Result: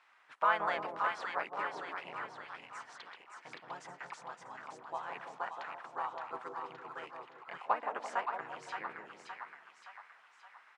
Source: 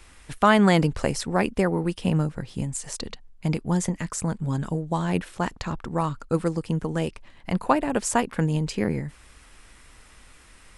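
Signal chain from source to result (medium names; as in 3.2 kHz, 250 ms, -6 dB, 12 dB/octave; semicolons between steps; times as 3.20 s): ladder band-pass 1.5 kHz, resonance 25%; two-band feedback delay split 990 Hz, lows 170 ms, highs 569 ms, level -4 dB; harmony voices -4 st -2 dB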